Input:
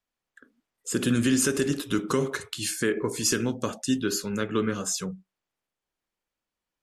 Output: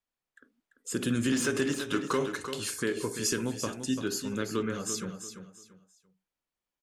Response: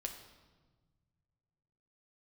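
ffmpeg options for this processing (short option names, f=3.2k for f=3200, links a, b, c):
-filter_complex "[0:a]asettb=1/sr,asplit=3[a][b][c];[a]atrim=end=1.324[d];[b]atrim=start=1.32:end=2.26,asetpts=PTS-STARTPTS,afade=t=in:d=0.004:c=qsin,afade=t=out:st=0.936:d=0.004:c=qsin,asplit=2[e][f];[f]highpass=f=720:p=1,volume=13dB,asoftclip=type=tanh:threshold=-11dB[g];[e][g]amix=inputs=2:normalize=0,lowpass=f=2.8k:p=1,volume=-6dB[h];[c]atrim=start=2.256[i];[d][h]acrossfade=d=0.004:c1=hsin:c2=qsin[j];[j][i]acrossfade=d=0.004:c1=qsin:c2=hsin,aecho=1:1:341|682|1023:0.355|0.0993|0.0278,volume=-5dB"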